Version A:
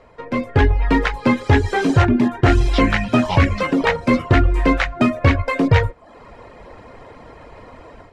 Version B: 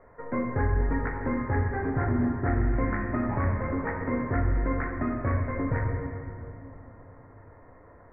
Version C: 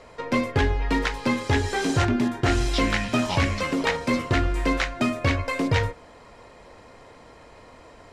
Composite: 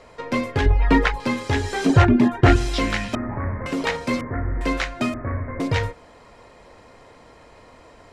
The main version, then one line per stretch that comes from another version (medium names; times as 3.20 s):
C
0.66–1.20 s: from A
1.86–2.56 s: from A
3.15–3.66 s: from B
4.21–4.61 s: from B
5.14–5.60 s: from B